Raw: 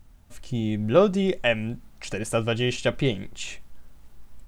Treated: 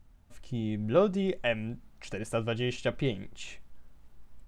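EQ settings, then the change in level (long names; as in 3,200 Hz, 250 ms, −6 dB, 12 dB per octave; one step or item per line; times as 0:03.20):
high-shelf EQ 4,100 Hz −6 dB
−6.0 dB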